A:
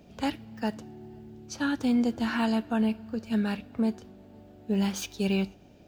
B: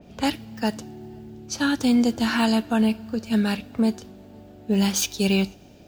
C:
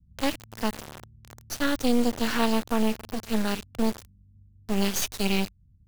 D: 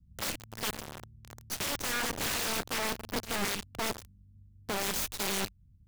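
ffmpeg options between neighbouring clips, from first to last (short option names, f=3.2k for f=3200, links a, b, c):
-af "adynamicequalizer=threshold=0.00316:dfrequency=3200:dqfactor=0.7:tfrequency=3200:tqfactor=0.7:attack=5:release=100:ratio=0.375:range=4:mode=boostabove:tftype=highshelf,volume=5.5dB"
-filter_complex "[0:a]acrossover=split=120[a][b];[a]acompressor=threshold=-48dB:ratio=6[c];[b]acrusher=bits=3:dc=4:mix=0:aa=0.000001[d];[c][d]amix=inputs=2:normalize=0"
-af "aeval=exprs='(mod(14.1*val(0)+1,2)-1)/14.1':c=same,volume=-1.5dB"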